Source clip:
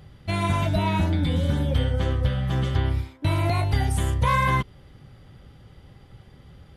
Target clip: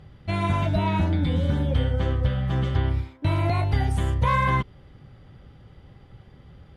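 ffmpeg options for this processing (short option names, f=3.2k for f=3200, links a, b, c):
-af "aemphasis=mode=reproduction:type=50kf"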